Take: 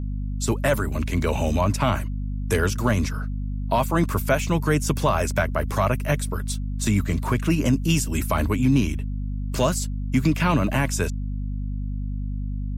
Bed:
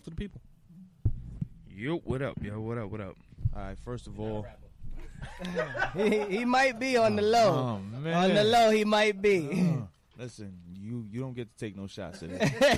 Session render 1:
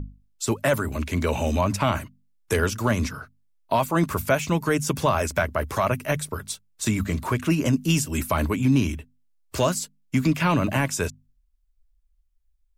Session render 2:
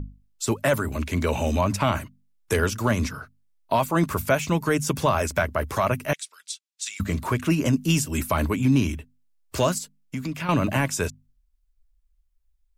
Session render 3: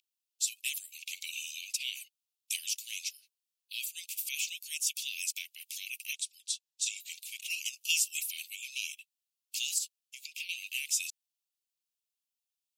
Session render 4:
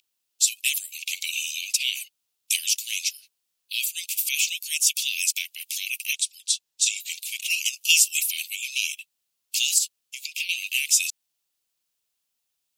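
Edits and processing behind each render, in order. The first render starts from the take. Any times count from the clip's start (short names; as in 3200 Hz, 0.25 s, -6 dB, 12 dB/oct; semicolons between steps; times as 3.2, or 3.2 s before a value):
notches 50/100/150/200/250 Hz
6.13–7 Butterworth band-pass 4700 Hz, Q 0.82; 9.78–10.49 compressor 2:1, threshold -33 dBFS
steep high-pass 2500 Hz 72 dB/oct
gain +11 dB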